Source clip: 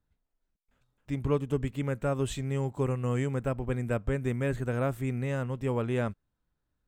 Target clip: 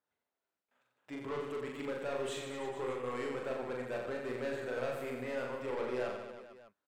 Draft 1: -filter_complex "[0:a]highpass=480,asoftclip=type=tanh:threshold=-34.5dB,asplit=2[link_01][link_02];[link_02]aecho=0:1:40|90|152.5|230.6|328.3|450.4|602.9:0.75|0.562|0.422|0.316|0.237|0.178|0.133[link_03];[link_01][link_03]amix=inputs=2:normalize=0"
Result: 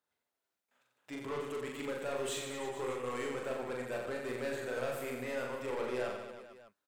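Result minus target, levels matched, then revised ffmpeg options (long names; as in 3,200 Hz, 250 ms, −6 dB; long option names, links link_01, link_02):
8,000 Hz band +7.0 dB
-filter_complex "[0:a]highpass=480,highshelf=frequency=3900:gain=-10.5,asoftclip=type=tanh:threshold=-34.5dB,asplit=2[link_01][link_02];[link_02]aecho=0:1:40|90|152.5|230.6|328.3|450.4|602.9:0.75|0.562|0.422|0.316|0.237|0.178|0.133[link_03];[link_01][link_03]amix=inputs=2:normalize=0"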